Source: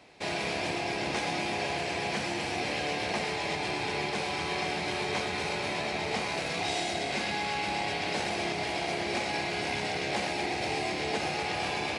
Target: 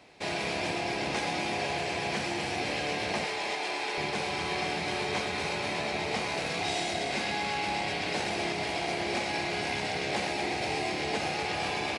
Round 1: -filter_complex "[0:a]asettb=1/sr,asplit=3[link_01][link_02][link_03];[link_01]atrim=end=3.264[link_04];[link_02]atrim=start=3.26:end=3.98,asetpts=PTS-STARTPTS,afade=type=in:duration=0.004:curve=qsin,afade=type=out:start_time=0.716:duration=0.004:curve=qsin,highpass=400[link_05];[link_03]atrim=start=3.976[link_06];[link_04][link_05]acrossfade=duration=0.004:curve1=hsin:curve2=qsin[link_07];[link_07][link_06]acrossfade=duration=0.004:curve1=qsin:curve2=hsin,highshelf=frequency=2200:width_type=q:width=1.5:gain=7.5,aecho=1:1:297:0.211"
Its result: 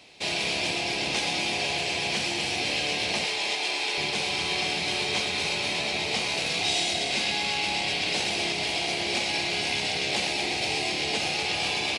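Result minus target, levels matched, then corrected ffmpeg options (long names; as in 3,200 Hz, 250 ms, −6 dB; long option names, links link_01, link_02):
4,000 Hz band +4.0 dB
-filter_complex "[0:a]asettb=1/sr,asplit=3[link_01][link_02][link_03];[link_01]atrim=end=3.264[link_04];[link_02]atrim=start=3.26:end=3.98,asetpts=PTS-STARTPTS,afade=type=in:duration=0.004:curve=qsin,afade=type=out:start_time=0.716:duration=0.004:curve=qsin,highpass=400[link_05];[link_03]atrim=start=3.976[link_06];[link_04][link_05]acrossfade=duration=0.004:curve1=hsin:curve2=qsin[link_07];[link_07][link_06]acrossfade=duration=0.004:curve1=qsin:curve2=hsin,aecho=1:1:297:0.211"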